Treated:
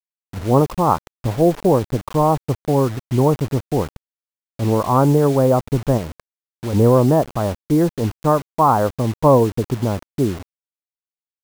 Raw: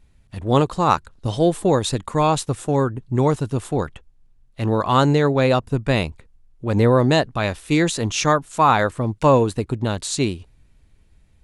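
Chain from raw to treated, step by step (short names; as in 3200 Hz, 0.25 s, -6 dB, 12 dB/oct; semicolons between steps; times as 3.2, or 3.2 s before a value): LPF 1100 Hz 24 dB/oct; 5.97–6.73 compressor, threshold -24 dBFS, peak gain reduction 7 dB; bit-crush 6-bit; gain +2.5 dB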